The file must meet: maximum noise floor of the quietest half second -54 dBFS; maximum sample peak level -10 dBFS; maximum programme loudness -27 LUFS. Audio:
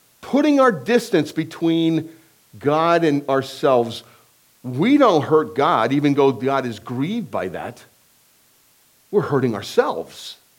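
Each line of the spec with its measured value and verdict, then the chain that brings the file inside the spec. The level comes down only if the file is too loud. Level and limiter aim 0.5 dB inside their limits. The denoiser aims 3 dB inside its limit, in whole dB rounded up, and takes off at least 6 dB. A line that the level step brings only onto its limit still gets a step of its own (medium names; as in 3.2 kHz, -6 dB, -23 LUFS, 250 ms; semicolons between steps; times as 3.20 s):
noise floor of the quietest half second -57 dBFS: pass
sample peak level -3.0 dBFS: fail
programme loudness -19.0 LUFS: fail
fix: trim -8.5 dB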